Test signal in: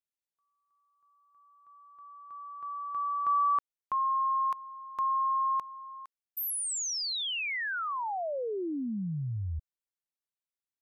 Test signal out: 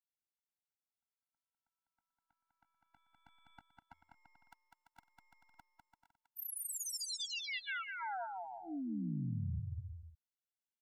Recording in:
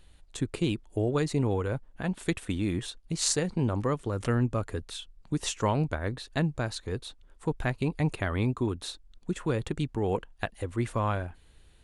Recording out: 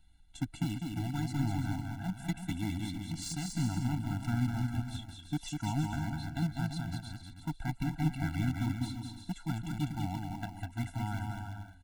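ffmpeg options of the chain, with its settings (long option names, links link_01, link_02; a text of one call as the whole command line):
ffmpeg -i in.wav -filter_complex "[0:a]acrossover=split=310[link_01][link_02];[link_02]acompressor=threshold=-33dB:ratio=1.5:attack=0.49:release=20:knee=2.83:detection=peak[link_03];[link_01][link_03]amix=inputs=2:normalize=0,asplit=2[link_04][link_05];[link_05]acrusher=bits=3:mix=0:aa=0.000001,volume=-8.5dB[link_06];[link_04][link_06]amix=inputs=2:normalize=0,aecho=1:1:200|340|438|506.6|554.6:0.631|0.398|0.251|0.158|0.1,aeval=exprs='0.335*(cos(1*acos(clip(val(0)/0.335,-1,1)))-cos(1*PI/2))+0.0188*(cos(2*acos(clip(val(0)/0.335,-1,1)))-cos(2*PI/2))+0.0211*(cos(3*acos(clip(val(0)/0.335,-1,1)))-cos(3*PI/2))+0.00266*(cos(4*acos(clip(val(0)/0.335,-1,1)))-cos(4*PI/2))':channel_layout=same,afftfilt=real='re*eq(mod(floor(b*sr/1024/330),2),0)':imag='im*eq(mod(floor(b*sr/1024/330),2),0)':win_size=1024:overlap=0.75,volume=-5dB" out.wav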